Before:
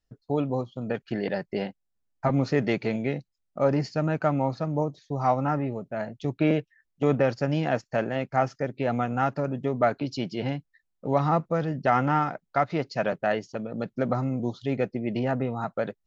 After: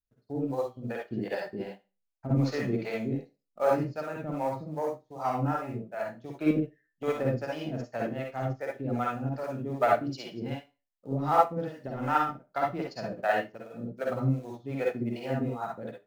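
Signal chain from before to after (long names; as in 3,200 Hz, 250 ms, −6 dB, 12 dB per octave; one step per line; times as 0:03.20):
parametric band 150 Hz −9 dB 0.22 octaves
in parallel at −10.5 dB: floating-point word with a short mantissa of 2 bits
on the sum: soft clipping −10.5 dBFS, distortion −22 dB
two-band tremolo in antiphase 2.6 Hz, depth 100%, crossover 420 Hz
convolution reverb RT60 0.30 s, pre-delay 46 ms, DRR −1.5 dB
expander for the loud parts 1.5 to 1, over −44 dBFS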